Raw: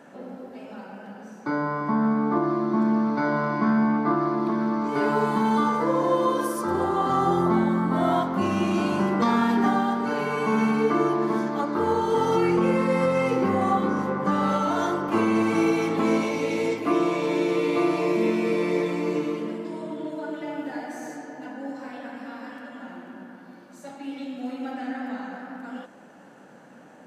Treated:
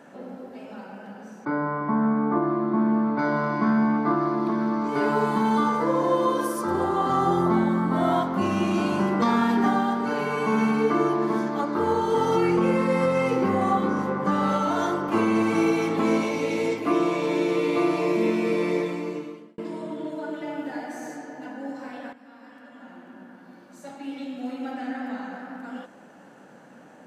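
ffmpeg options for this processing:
ffmpeg -i in.wav -filter_complex "[0:a]asettb=1/sr,asplit=3[link_01][link_02][link_03];[link_01]atrim=end=1.454[link_04];[link_02]atrim=start=1.45:end=3.19,asetpts=PTS-STARTPTS,afade=type=in:duration=0.004:curve=qsin,afade=type=out:start_time=1.736:duration=0.004:curve=qsin,lowpass=2400[link_05];[link_03]atrim=start=3.186[link_06];[link_04][link_05]acrossfade=duration=0.004:curve1=hsin:curve2=qsin[link_07];[link_07][link_06]acrossfade=duration=0.004:curve1=qsin:curve2=hsin,asplit=3[link_08][link_09][link_10];[link_08]atrim=end=19.58,asetpts=PTS-STARTPTS,afade=type=out:start_time=18.7:duration=0.88[link_11];[link_09]atrim=start=19.58:end=22.13,asetpts=PTS-STARTPTS,afade=type=in:duration=0.004:curve=hsin,afade=type=out:start_time=2.546:duration=0.004:curve=hsin:silence=0.199526[link_12];[link_10]atrim=start=22.13,asetpts=PTS-STARTPTS,afade=type=in:duration=1.8:silence=0.199526[link_13];[link_11][link_12][link_13]concat=n=3:v=0:a=1" out.wav

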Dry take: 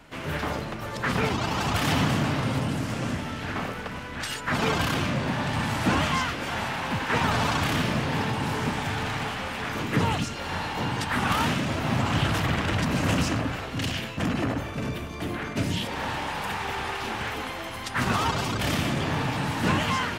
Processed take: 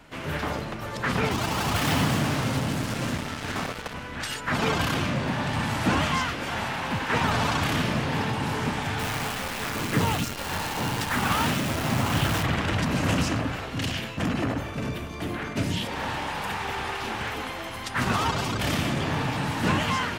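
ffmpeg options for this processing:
ffmpeg -i in.wav -filter_complex "[0:a]asettb=1/sr,asplit=3[link_01][link_02][link_03];[link_01]atrim=end=1.314[link_04];[link_02]atrim=start=1.31:end=3.94,asetpts=PTS-STARTPTS,afade=type=in:duration=0.004:curve=qsin,afade=type=out:start_time=2.626:duration=0.004:curve=qsin,acrusher=bits=4:mix=0:aa=0.5[link_05];[link_03]atrim=start=3.936[link_06];[link_04][link_05]acrossfade=duration=0.004:curve1=hsin:curve2=qsin[link_07];[link_07][link_06]acrossfade=duration=0.004:curve1=qsin:curve2=hsin,asettb=1/sr,asplit=3[link_08][link_09][link_10];[link_08]atrim=end=8.994[link_11];[link_09]atrim=start=8.99:end=12.43,asetpts=PTS-STARTPTS,afade=type=in:duration=0.004:curve=qsin,afade=type=out:start_time=3.436:duration=0.004:curve=qsin,acrusher=bits=6:dc=4:mix=0:aa=0.000001[link_12];[link_10]atrim=start=12.426[link_13];[link_11][link_12]acrossfade=duration=0.004:curve1=hsin:curve2=qsin[link_14];[link_14][link_13]acrossfade=duration=0.004:curve1=qsin:curve2=hsin" out.wav

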